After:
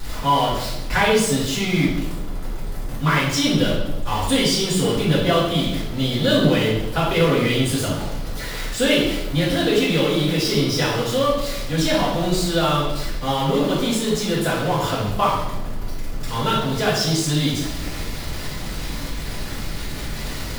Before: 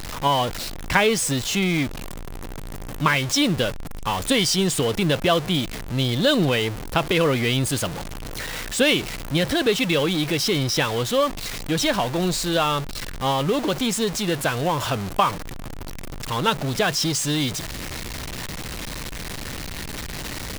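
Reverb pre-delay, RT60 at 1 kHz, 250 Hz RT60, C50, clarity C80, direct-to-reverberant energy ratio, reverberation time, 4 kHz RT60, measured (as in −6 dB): 3 ms, 0.90 s, 1.2 s, 1.5 dB, 5.0 dB, −9.5 dB, 1.0 s, 0.80 s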